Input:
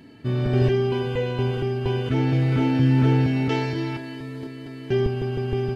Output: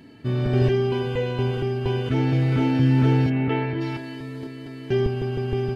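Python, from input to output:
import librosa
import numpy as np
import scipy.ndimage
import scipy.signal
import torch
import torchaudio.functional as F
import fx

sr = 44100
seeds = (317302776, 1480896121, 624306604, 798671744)

y = fx.lowpass(x, sr, hz=2800.0, slope=24, at=(3.29, 3.8), fade=0.02)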